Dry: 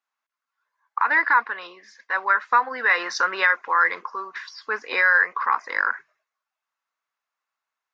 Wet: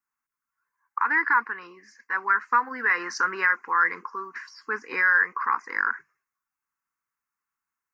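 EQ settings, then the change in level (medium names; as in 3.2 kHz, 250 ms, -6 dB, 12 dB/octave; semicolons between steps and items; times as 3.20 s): tilt shelf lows +7 dB, about 790 Hz; treble shelf 3.6 kHz +11.5 dB; static phaser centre 1.5 kHz, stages 4; 0.0 dB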